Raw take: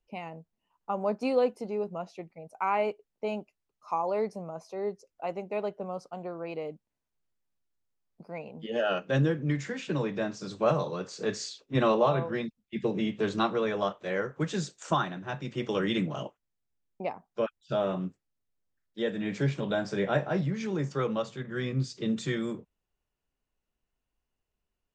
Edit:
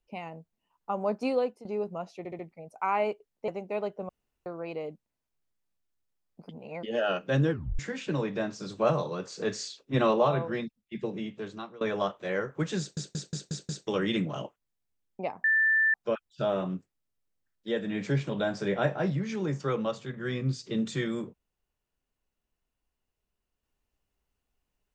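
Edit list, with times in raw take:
1.28–1.65 s: fade out, to -13 dB
2.18 s: stutter 0.07 s, 4 plays
3.27–5.29 s: delete
5.90–6.27 s: room tone
8.30–8.64 s: reverse
9.32 s: tape stop 0.28 s
12.31–13.62 s: fade out, to -21.5 dB
14.60 s: stutter in place 0.18 s, 6 plays
17.25 s: add tone 1.77 kHz -20.5 dBFS 0.50 s

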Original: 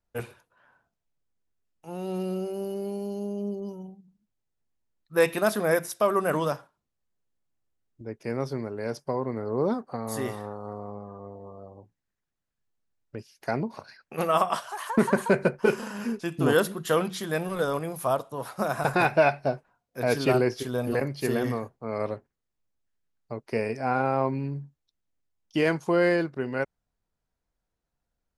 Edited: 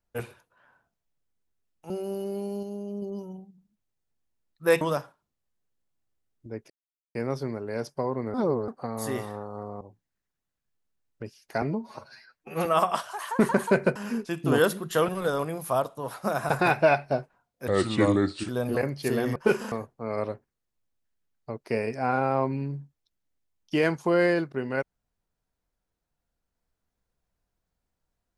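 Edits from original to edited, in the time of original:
1.90–2.40 s: delete
3.13–3.52 s: gain -3.5 dB
5.31–6.36 s: delete
8.25 s: insert silence 0.45 s
9.44–9.78 s: reverse
10.91–11.74 s: delete
13.55–14.24 s: stretch 1.5×
15.54–15.90 s: move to 21.54 s
17.03–17.43 s: delete
20.02–20.67 s: speed 80%

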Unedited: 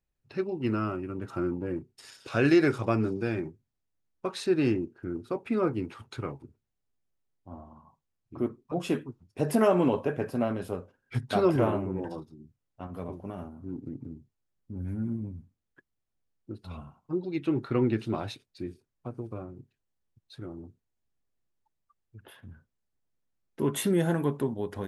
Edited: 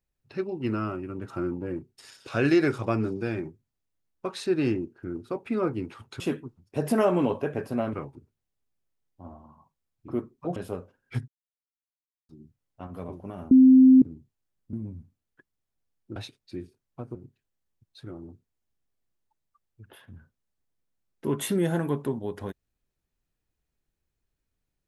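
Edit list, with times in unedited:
8.83–10.56 s: move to 6.20 s
11.28–12.29 s: mute
13.51–14.02 s: bleep 260 Hz -10.5 dBFS
14.73–15.12 s: delete
16.55–18.23 s: delete
19.22–19.50 s: delete

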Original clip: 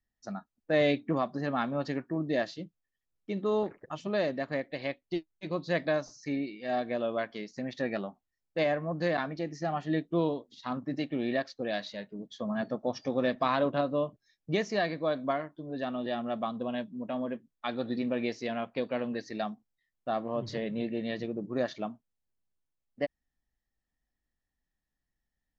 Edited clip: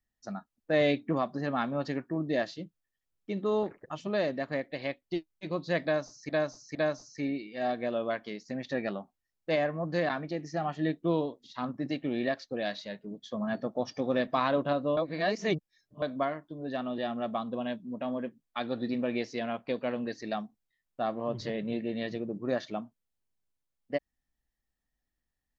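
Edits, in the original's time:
5.83–6.29 s: loop, 3 plays
14.05–15.10 s: reverse

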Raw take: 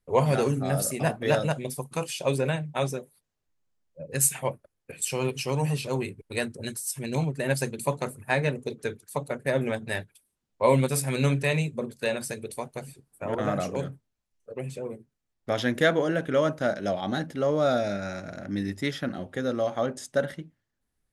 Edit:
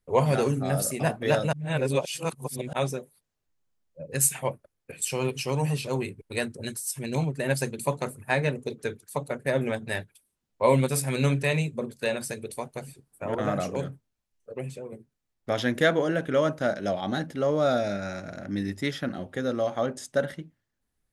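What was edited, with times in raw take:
1.53–2.73 s: reverse
14.64–14.92 s: fade out, to -7.5 dB

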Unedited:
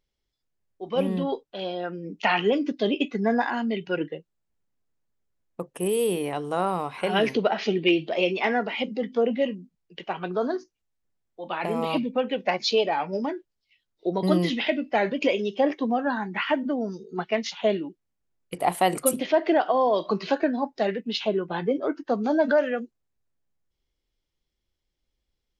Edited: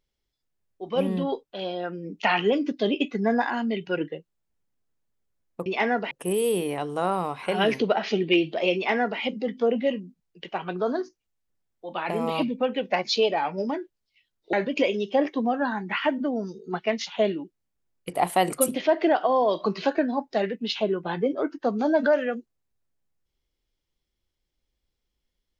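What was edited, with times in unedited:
8.30–8.75 s: copy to 5.66 s
14.08–14.98 s: delete

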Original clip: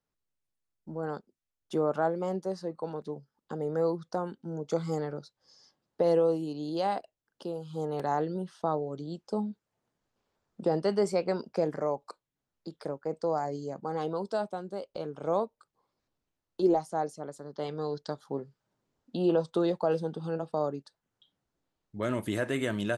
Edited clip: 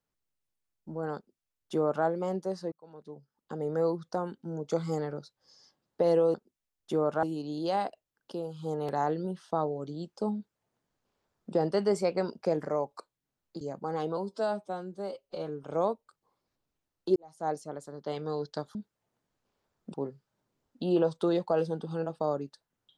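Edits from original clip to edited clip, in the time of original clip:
1.16–2.05 s: copy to 6.34 s
2.72–3.67 s: fade in
9.46–10.65 s: copy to 18.27 s
12.72–13.62 s: delete
14.18–15.16 s: stretch 1.5×
16.68–17.01 s: fade in quadratic

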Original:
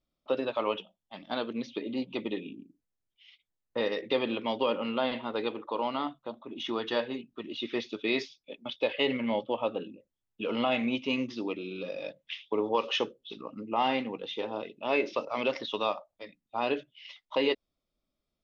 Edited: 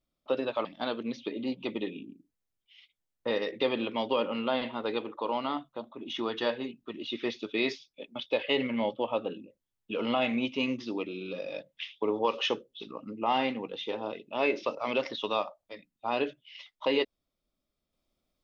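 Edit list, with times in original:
0.65–1.15 s: delete

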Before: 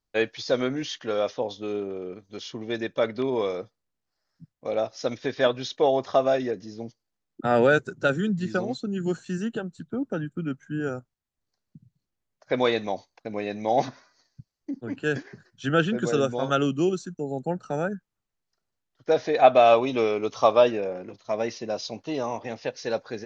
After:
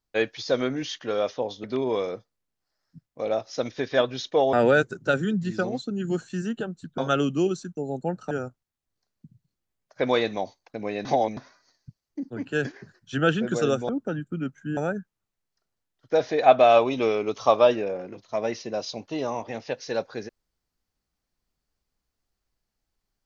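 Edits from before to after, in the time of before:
1.64–3.10 s: delete
5.99–7.49 s: delete
9.94–10.82 s: swap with 16.40–17.73 s
13.56–13.88 s: reverse

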